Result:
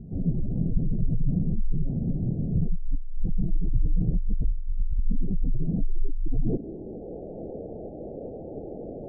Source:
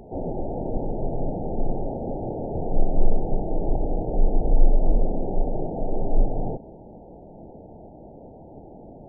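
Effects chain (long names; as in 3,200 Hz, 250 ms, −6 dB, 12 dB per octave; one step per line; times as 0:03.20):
gate on every frequency bin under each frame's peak −15 dB strong
compressor whose output falls as the input rises −21 dBFS, ratio −1
low-pass filter sweep 170 Hz → 490 Hz, 0:05.60–0:07.20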